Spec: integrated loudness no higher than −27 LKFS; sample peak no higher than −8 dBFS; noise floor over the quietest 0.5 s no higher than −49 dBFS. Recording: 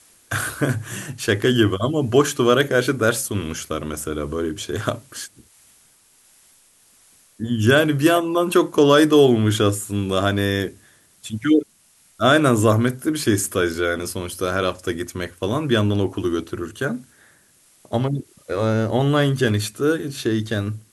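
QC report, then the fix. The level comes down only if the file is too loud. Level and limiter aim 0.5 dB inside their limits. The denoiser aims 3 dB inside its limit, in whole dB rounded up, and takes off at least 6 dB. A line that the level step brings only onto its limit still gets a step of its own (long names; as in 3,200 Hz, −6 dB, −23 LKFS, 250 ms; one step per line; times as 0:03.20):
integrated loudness −20.0 LKFS: out of spec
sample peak −3.5 dBFS: out of spec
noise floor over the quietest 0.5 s −57 dBFS: in spec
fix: level −7.5 dB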